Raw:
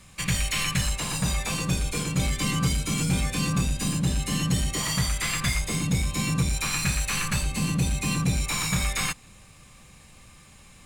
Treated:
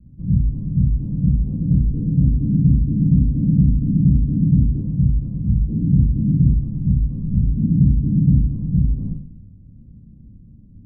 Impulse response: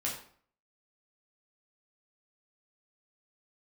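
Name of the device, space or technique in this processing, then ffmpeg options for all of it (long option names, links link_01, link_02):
next room: -filter_complex "[0:a]lowpass=frequency=270:width=0.5412,lowpass=frequency=270:width=1.3066[link_01];[1:a]atrim=start_sample=2205[link_02];[link_01][link_02]afir=irnorm=-1:irlink=0,volume=7dB"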